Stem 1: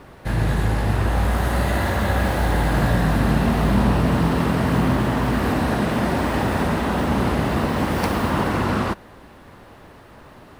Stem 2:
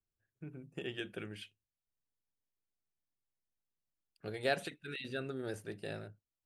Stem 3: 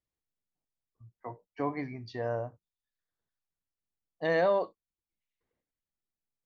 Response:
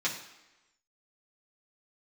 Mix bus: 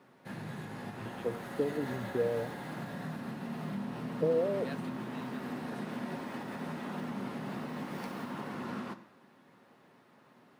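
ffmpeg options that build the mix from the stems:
-filter_complex "[0:a]equalizer=frequency=240:width_type=o:width=0.32:gain=6.5,alimiter=limit=-12.5dB:level=0:latency=1:release=173,volume=-19dB,asplit=2[link_01][link_02];[link_02]volume=-10.5dB[link_03];[1:a]adelay=200,volume=-13dB[link_04];[2:a]aemphasis=mode=reproduction:type=bsi,acompressor=threshold=-35dB:ratio=6,lowpass=frequency=470:width_type=q:width=4.9,volume=-0.5dB[link_05];[3:a]atrim=start_sample=2205[link_06];[link_03][link_06]afir=irnorm=-1:irlink=0[link_07];[link_01][link_04][link_05][link_07]amix=inputs=4:normalize=0,highpass=frequency=130:width=0.5412,highpass=frequency=130:width=1.3066"

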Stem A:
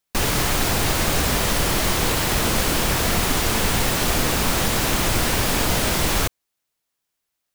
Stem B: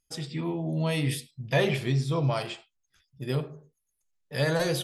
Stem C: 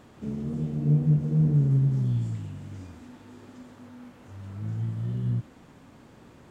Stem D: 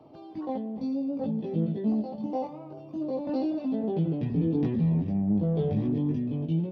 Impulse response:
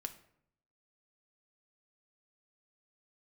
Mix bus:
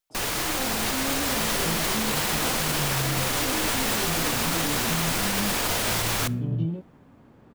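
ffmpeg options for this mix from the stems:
-filter_complex "[0:a]lowshelf=frequency=290:gain=-10,dynaudnorm=framelen=250:gausssize=9:maxgain=6dB,volume=-7dB,asplit=2[link_01][link_02];[link_02]volume=-7.5dB[link_03];[1:a]volume=-19.5dB,asplit=2[link_04][link_05];[2:a]lowpass=frequency=1500:poles=1,adelay=1250,volume=-1dB[link_06];[3:a]adelay=100,volume=-1.5dB,asplit=3[link_07][link_08][link_09];[link_07]atrim=end=5.53,asetpts=PTS-STARTPTS,afade=type=out:start_time=5.526:duration=0.004:curve=hsin[link_10];[link_08]atrim=start=5.53:end=6.22,asetpts=PTS-STARTPTS,volume=0[link_11];[link_09]atrim=start=6.22,asetpts=PTS-STARTPTS,afade=type=in:duration=0.004:curve=hsin[link_12];[link_10][link_11][link_12]concat=n=3:v=0:a=1[link_13];[link_05]apad=whole_len=342106[link_14];[link_06][link_14]sidechaincompress=threshold=-54dB:ratio=8:attack=16:release=912[link_15];[4:a]atrim=start_sample=2205[link_16];[link_03][link_16]afir=irnorm=-1:irlink=0[link_17];[link_01][link_04][link_15][link_13][link_17]amix=inputs=5:normalize=0,alimiter=limit=-15.5dB:level=0:latency=1"

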